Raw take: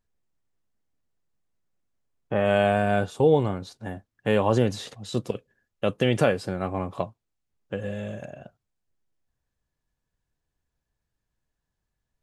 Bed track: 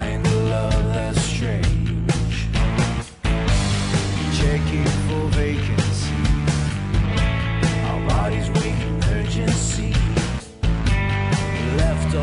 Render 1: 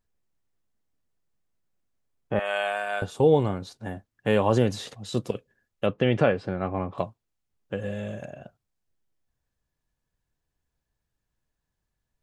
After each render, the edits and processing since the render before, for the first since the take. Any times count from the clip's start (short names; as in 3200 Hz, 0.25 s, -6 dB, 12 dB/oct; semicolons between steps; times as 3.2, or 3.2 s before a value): 2.39–3.02 HPF 900 Hz; 5.86–6.98 LPF 3000 Hz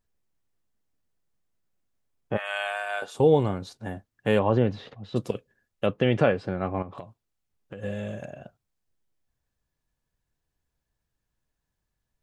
2.36–3.13 HPF 1100 Hz -> 480 Hz; 4.39–5.16 air absorption 320 m; 6.82–7.83 compressor 8:1, threshold -35 dBFS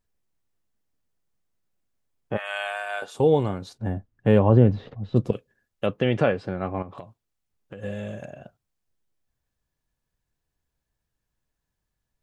3.78–5.33 tilt -3 dB/oct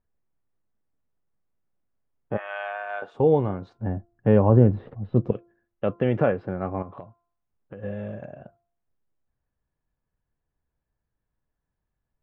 LPF 1600 Hz 12 dB/oct; de-hum 344.6 Hz, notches 4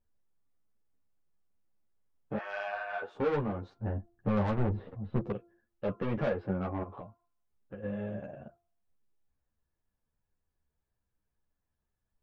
soft clip -22 dBFS, distortion -5 dB; ensemble effect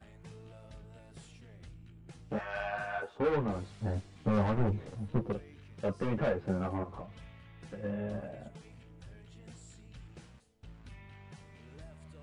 add bed track -32 dB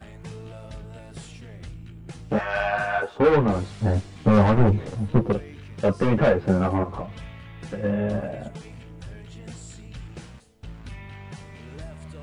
gain +12 dB